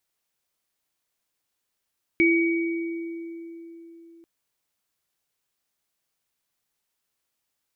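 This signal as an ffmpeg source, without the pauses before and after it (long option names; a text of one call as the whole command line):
ffmpeg -f lavfi -i "aevalsrc='0.141*pow(10,-3*t/3.9)*sin(2*PI*334*t)+0.126*pow(10,-3*t/1.82)*sin(2*PI*2260*t)':duration=2.04:sample_rate=44100" out.wav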